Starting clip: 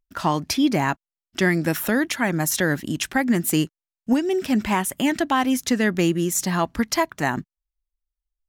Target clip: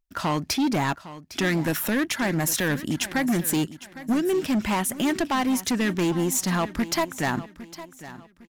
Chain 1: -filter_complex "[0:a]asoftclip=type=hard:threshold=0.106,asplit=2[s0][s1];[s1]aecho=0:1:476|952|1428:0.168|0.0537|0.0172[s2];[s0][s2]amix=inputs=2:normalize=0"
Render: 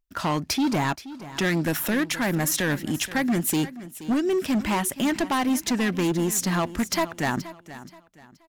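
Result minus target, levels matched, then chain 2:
echo 331 ms early
-filter_complex "[0:a]asoftclip=type=hard:threshold=0.106,asplit=2[s0][s1];[s1]aecho=0:1:807|1614|2421:0.168|0.0537|0.0172[s2];[s0][s2]amix=inputs=2:normalize=0"

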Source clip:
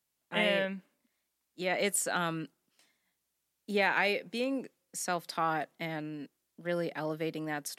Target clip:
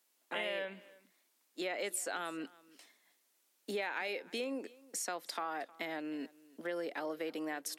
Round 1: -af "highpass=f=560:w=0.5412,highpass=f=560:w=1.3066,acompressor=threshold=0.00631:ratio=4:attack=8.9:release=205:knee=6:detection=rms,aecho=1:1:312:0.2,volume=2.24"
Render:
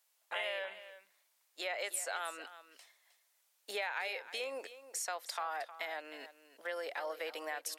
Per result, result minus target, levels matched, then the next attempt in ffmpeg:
250 Hz band -15.5 dB; echo-to-direct +8 dB
-af "highpass=f=270:w=0.5412,highpass=f=270:w=1.3066,acompressor=threshold=0.00631:ratio=4:attack=8.9:release=205:knee=6:detection=rms,aecho=1:1:312:0.2,volume=2.24"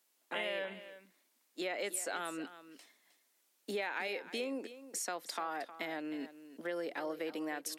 echo-to-direct +8 dB
-af "highpass=f=270:w=0.5412,highpass=f=270:w=1.3066,acompressor=threshold=0.00631:ratio=4:attack=8.9:release=205:knee=6:detection=rms,aecho=1:1:312:0.0794,volume=2.24"

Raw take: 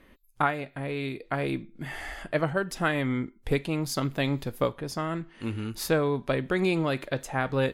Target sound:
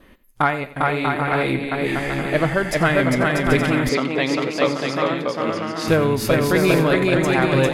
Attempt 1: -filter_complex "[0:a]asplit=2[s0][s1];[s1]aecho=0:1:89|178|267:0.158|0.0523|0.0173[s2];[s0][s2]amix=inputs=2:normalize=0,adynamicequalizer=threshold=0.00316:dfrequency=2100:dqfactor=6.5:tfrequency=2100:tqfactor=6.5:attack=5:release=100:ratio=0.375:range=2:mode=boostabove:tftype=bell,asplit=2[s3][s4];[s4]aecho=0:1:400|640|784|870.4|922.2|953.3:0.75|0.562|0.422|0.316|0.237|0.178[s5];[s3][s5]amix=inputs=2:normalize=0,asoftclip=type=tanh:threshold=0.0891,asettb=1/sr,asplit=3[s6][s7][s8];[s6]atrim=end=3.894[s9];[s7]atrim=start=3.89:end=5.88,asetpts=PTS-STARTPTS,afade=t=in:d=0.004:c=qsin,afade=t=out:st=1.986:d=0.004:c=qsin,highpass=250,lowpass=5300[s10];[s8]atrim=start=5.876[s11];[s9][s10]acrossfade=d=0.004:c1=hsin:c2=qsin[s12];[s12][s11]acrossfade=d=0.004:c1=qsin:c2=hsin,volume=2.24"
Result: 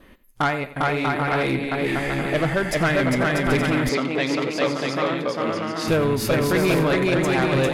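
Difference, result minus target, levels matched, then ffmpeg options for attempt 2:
saturation: distortion +15 dB
-filter_complex "[0:a]asplit=2[s0][s1];[s1]aecho=0:1:89|178|267:0.158|0.0523|0.0173[s2];[s0][s2]amix=inputs=2:normalize=0,adynamicequalizer=threshold=0.00316:dfrequency=2100:dqfactor=6.5:tfrequency=2100:tqfactor=6.5:attack=5:release=100:ratio=0.375:range=2:mode=boostabove:tftype=bell,asplit=2[s3][s4];[s4]aecho=0:1:400|640|784|870.4|922.2|953.3:0.75|0.562|0.422|0.316|0.237|0.178[s5];[s3][s5]amix=inputs=2:normalize=0,asoftclip=type=tanh:threshold=0.299,asettb=1/sr,asplit=3[s6][s7][s8];[s6]atrim=end=3.894[s9];[s7]atrim=start=3.89:end=5.88,asetpts=PTS-STARTPTS,afade=t=in:d=0.004:c=qsin,afade=t=out:st=1.986:d=0.004:c=qsin,highpass=250,lowpass=5300[s10];[s8]atrim=start=5.876[s11];[s9][s10]acrossfade=d=0.004:c1=hsin:c2=qsin[s12];[s12][s11]acrossfade=d=0.004:c1=qsin:c2=hsin,volume=2.24"

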